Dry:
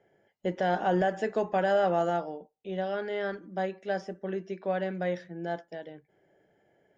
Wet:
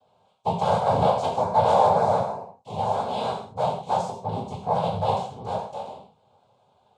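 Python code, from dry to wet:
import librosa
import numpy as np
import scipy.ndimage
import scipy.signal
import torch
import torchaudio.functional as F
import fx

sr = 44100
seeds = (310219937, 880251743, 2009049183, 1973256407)

y = fx.noise_vocoder(x, sr, seeds[0], bands=6)
y = fx.fixed_phaser(y, sr, hz=770.0, stages=4)
y = fx.rev_gated(y, sr, seeds[1], gate_ms=190, shape='falling', drr_db=-2.5)
y = y * librosa.db_to_amplitude(4.5)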